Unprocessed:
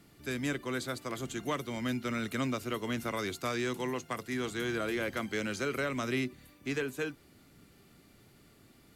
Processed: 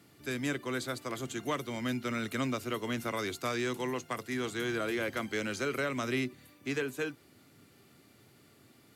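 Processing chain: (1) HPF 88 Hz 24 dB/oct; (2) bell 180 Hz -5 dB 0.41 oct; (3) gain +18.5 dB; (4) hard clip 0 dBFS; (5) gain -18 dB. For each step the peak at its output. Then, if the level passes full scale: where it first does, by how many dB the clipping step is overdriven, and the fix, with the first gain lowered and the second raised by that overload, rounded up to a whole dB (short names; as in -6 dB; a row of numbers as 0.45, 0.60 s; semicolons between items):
-20.0, -20.5, -2.0, -2.0, -20.0 dBFS; no overload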